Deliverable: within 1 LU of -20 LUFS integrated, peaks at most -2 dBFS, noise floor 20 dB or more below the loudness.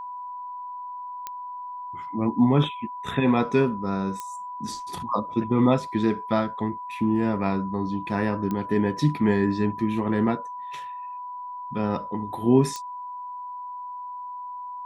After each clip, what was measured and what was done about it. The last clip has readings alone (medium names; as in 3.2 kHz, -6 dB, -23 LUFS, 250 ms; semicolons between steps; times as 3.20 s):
clicks found 4; steady tone 990 Hz; tone level -33 dBFS; loudness -26.5 LUFS; peak level -7.0 dBFS; loudness target -20.0 LUFS
-> de-click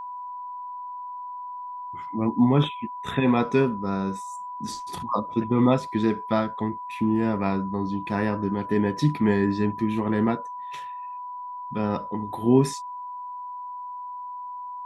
clicks found 0; steady tone 990 Hz; tone level -33 dBFS
-> band-stop 990 Hz, Q 30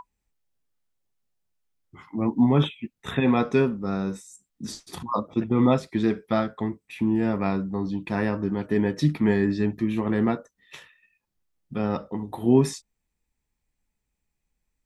steady tone not found; loudness -25.0 LUFS; peak level -7.5 dBFS; loudness target -20.0 LUFS
-> trim +5 dB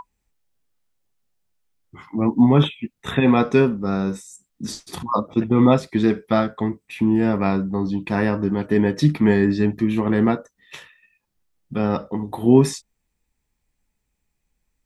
loudness -20.0 LUFS; peak level -2.5 dBFS; noise floor -76 dBFS